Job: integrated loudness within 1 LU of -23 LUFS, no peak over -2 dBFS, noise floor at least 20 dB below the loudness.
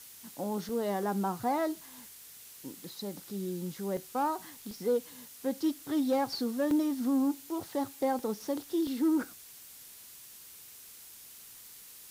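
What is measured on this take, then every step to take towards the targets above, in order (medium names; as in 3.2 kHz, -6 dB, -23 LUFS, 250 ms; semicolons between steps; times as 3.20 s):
dropouts 6; longest dropout 2.1 ms; noise floor -51 dBFS; noise floor target -53 dBFS; loudness -32.5 LUFS; peak level -19.5 dBFS; loudness target -23.0 LUFS
-> interpolate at 0.69/3.97/4.71/6.71/8.19/8.87 s, 2.1 ms; noise print and reduce 6 dB; trim +9.5 dB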